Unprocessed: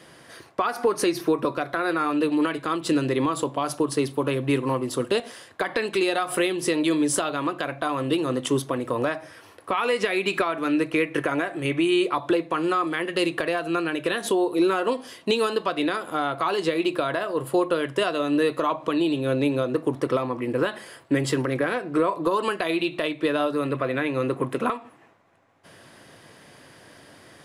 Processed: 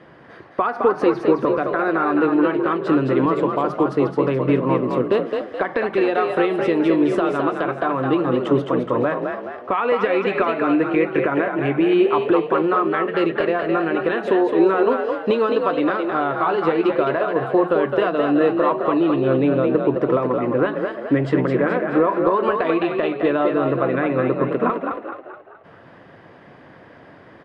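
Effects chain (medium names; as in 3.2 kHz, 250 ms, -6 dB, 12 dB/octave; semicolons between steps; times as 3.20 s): low-pass 1.7 kHz 12 dB/octave; on a send: frequency-shifting echo 213 ms, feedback 46%, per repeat +44 Hz, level -5 dB; on the sum: trim +4.5 dB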